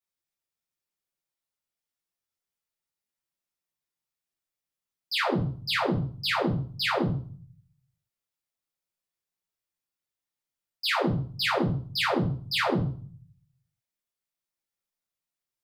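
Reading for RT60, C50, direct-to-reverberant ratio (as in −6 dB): 0.45 s, 7.5 dB, −7.5 dB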